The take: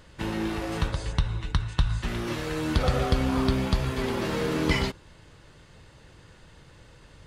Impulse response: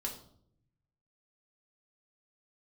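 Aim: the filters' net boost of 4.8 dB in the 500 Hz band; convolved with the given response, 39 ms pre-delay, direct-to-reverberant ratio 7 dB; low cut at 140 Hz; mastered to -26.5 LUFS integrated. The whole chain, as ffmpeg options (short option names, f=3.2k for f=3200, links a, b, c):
-filter_complex "[0:a]highpass=140,equalizer=f=500:t=o:g=6,asplit=2[a][b];[1:a]atrim=start_sample=2205,adelay=39[c];[b][c]afir=irnorm=-1:irlink=0,volume=-7.5dB[d];[a][d]amix=inputs=2:normalize=0"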